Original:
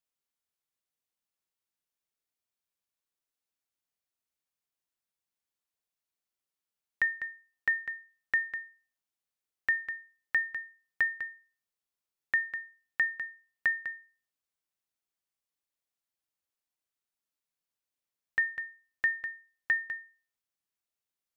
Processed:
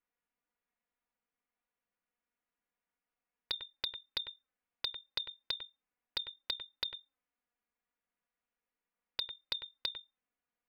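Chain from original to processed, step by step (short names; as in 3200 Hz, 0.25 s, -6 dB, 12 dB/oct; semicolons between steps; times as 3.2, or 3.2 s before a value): LPF 1200 Hz 24 dB/oct; envelope flanger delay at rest 8.3 ms, full sweep at -31.5 dBFS; speed mistake 7.5 ips tape played at 15 ips; gain +11 dB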